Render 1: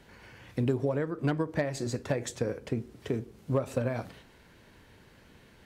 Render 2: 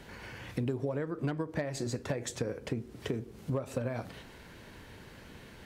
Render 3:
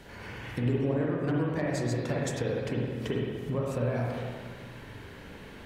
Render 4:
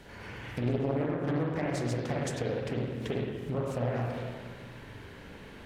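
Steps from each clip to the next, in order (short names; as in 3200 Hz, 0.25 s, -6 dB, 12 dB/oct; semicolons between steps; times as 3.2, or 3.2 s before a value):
compressor 2.5:1, threshold -41 dBFS, peak gain reduction 12.5 dB; gain +6 dB
spring tank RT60 1.9 s, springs 41/51/58 ms, chirp 65 ms, DRR -3.5 dB
Doppler distortion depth 0.71 ms; gain -1.5 dB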